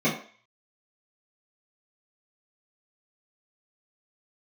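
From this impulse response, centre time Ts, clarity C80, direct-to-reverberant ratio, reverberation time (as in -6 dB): 27 ms, 11.0 dB, -10.0 dB, 0.45 s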